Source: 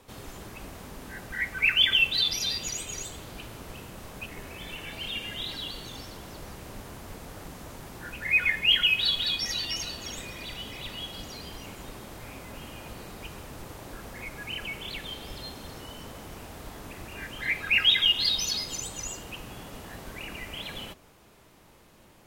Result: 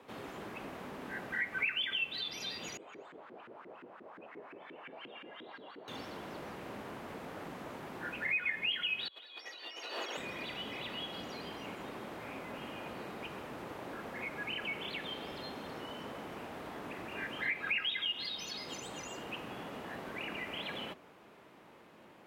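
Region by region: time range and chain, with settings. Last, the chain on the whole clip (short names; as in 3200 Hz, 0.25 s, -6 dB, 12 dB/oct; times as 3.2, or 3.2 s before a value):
2.77–5.88 notch 5900 Hz, Q 22 + LFO band-pass saw up 5.7 Hz 270–1800 Hz
9.08–10.17 HPF 370 Hz 24 dB/oct + high shelf 4700 Hz -5 dB + negative-ratio compressor -43 dBFS
whole clip: compressor 3:1, threshold -33 dBFS; HPF 63 Hz; three-band isolator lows -15 dB, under 170 Hz, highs -15 dB, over 3200 Hz; gain +1 dB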